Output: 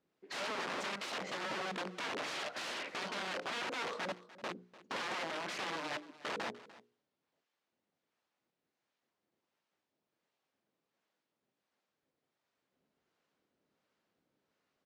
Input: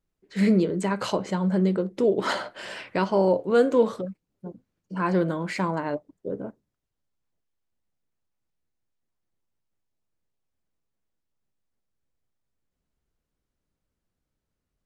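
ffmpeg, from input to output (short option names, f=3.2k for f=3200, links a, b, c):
-filter_complex "[0:a]bandreject=f=60:t=h:w=6,bandreject=f=120:t=h:w=6,bandreject=f=180:t=h:w=6,bandreject=f=240:t=h:w=6,bandreject=f=300:t=h:w=6,bandreject=f=360:t=h:w=6,bandreject=f=420:t=h:w=6,bandreject=f=480:t=h:w=6,asettb=1/sr,asplit=3[a][b][c];[a]atrim=end=0.624[d];[b]atrim=start=0.62:end=2.74,asetpts=PTS-STARTPTS,afade=t=in:d=0.004:c=qsin,afade=t=out:st=2.116:d=0.004:c=qsin,aecho=1:1:1.5:0.4,atrim=end_sample=93492[e];[c]atrim=start=2.736[f];[d][e]acrossfade=d=0.004:c1=hsin:c2=qsin[g];[g][f]acrossfade=d=0.004:c1=qsin:c2=hsin,alimiter=limit=-16dB:level=0:latency=1:release=34,acompressor=threshold=-39dB:ratio=5,acrossover=split=590[h][i];[h]aeval=exprs='val(0)*(1-0.5/2+0.5/2*cos(2*PI*1.4*n/s))':c=same[j];[i]aeval=exprs='val(0)*(1-0.5/2-0.5/2*cos(2*PI*1.4*n/s))':c=same[k];[j][k]amix=inputs=2:normalize=0,aeval=exprs='(mod(126*val(0)+1,2)-1)/126':c=same,highpass=260,lowpass=4.4k,aecho=1:1:297:0.126,volume=9.5dB" -ar 44100 -c:a libvorbis -b:a 128k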